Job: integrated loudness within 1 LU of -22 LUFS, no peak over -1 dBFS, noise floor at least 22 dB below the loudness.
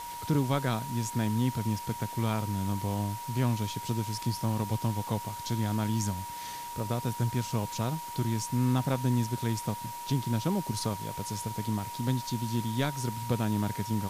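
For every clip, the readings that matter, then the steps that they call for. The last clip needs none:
steady tone 950 Hz; tone level -38 dBFS; noise floor -40 dBFS; noise floor target -54 dBFS; loudness -31.5 LUFS; peak level -16.5 dBFS; loudness target -22.0 LUFS
-> band-stop 950 Hz, Q 30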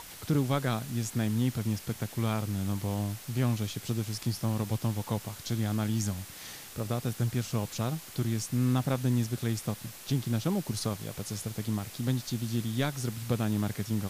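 steady tone not found; noise floor -47 dBFS; noise floor target -54 dBFS
-> noise reduction 7 dB, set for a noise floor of -47 dBFS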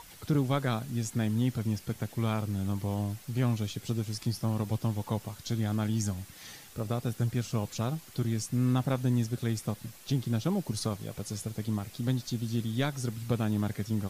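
noise floor -51 dBFS; noise floor target -54 dBFS
-> noise reduction 6 dB, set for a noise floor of -51 dBFS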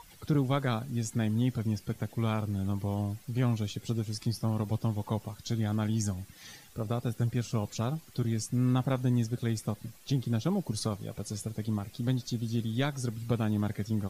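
noise floor -55 dBFS; loudness -32.0 LUFS; peak level -17.5 dBFS; loudness target -22.0 LUFS
-> trim +10 dB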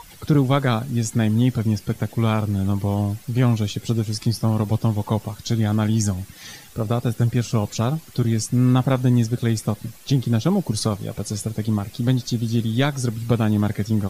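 loudness -22.0 LUFS; peak level -7.5 dBFS; noise floor -45 dBFS

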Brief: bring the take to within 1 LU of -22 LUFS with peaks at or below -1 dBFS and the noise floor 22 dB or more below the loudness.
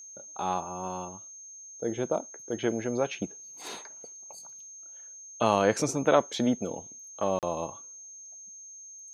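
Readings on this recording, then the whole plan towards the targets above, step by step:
dropouts 1; longest dropout 38 ms; steady tone 6.4 kHz; tone level -44 dBFS; loudness -30.0 LUFS; peak level -8.0 dBFS; loudness target -22.0 LUFS
-> interpolate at 7.39 s, 38 ms; band-stop 6.4 kHz, Q 30; trim +8 dB; peak limiter -1 dBFS

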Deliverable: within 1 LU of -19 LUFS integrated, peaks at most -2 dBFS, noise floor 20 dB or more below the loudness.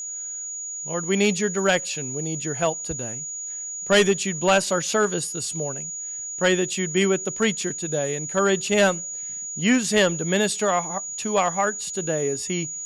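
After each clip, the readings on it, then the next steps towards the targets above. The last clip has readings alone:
tick rate 42 per s; steady tone 6.8 kHz; tone level -30 dBFS; loudness -23.5 LUFS; peak level -10.0 dBFS; loudness target -19.0 LUFS
-> de-click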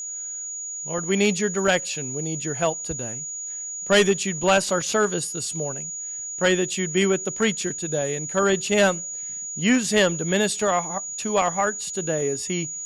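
tick rate 0.31 per s; steady tone 6.8 kHz; tone level -30 dBFS
-> band-stop 6.8 kHz, Q 30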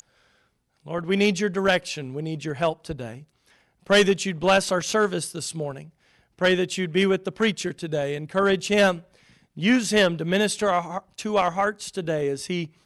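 steady tone not found; loudness -23.5 LUFS; peak level -9.5 dBFS; loudness target -19.0 LUFS
-> trim +4.5 dB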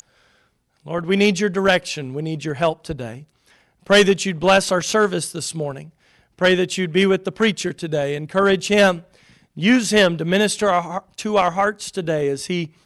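loudness -19.0 LUFS; peak level -5.0 dBFS; noise floor -64 dBFS

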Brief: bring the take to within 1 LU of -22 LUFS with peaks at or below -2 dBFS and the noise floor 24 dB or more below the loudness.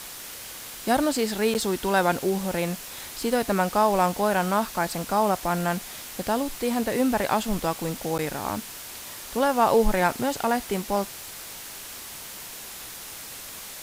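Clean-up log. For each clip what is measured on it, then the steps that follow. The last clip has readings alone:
dropouts 2; longest dropout 9.3 ms; noise floor -40 dBFS; noise floor target -49 dBFS; loudness -25.0 LUFS; peak level -8.0 dBFS; loudness target -22.0 LUFS
-> interpolate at 1.54/8.18 s, 9.3 ms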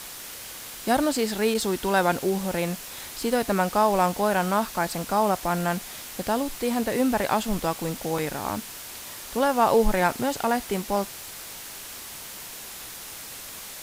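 dropouts 0; noise floor -40 dBFS; noise floor target -49 dBFS
-> noise reduction 9 dB, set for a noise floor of -40 dBFS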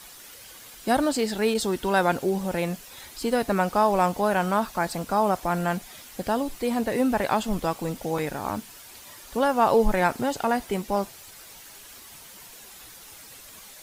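noise floor -46 dBFS; noise floor target -50 dBFS
-> noise reduction 6 dB, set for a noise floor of -46 dBFS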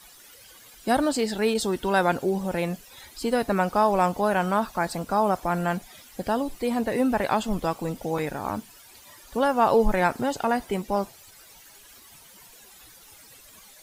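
noise floor -51 dBFS; loudness -25.5 LUFS; peak level -8.5 dBFS; loudness target -22.0 LUFS
-> trim +3.5 dB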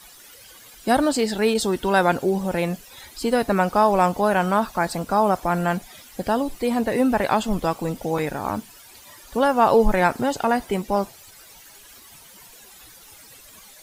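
loudness -22.0 LUFS; peak level -5.0 dBFS; noise floor -47 dBFS

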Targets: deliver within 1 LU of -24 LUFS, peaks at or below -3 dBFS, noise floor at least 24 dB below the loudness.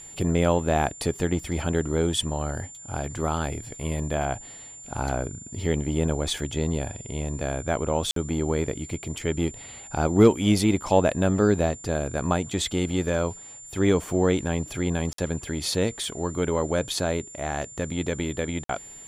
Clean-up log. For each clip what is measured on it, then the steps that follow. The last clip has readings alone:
dropouts 3; longest dropout 53 ms; steady tone 7.2 kHz; tone level -41 dBFS; loudness -26.0 LUFS; peak level -6.0 dBFS; loudness target -24.0 LUFS
-> interpolate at 8.11/15.13/18.64 s, 53 ms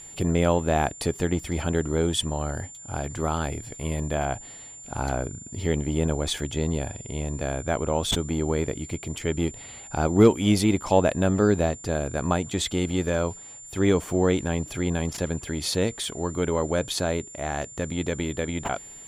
dropouts 0; steady tone 7.2 kHz; tone level -41 dBFS
-> band-stop 7.2 kHz, Q 30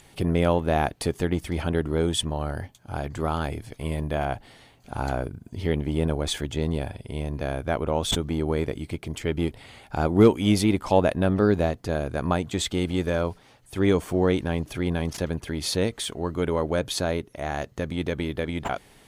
steady tone not found; loudness -26.0 LUFS; peak level -6.0 dBFS; loudness target -24.0 LUFS
-> trim +2 dB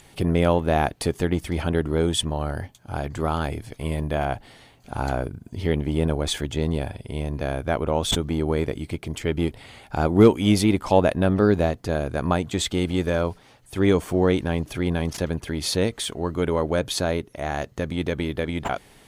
loudness -24.0 LUFS; peak level -4.0 dBFS; noise floor -53 dBFS

